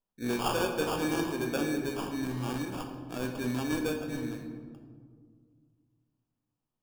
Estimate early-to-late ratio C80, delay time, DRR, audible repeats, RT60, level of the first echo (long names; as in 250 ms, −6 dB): 7.5 dB, no echo audible, 3.0 dB, no echo audible, 1.9 s, no echo audible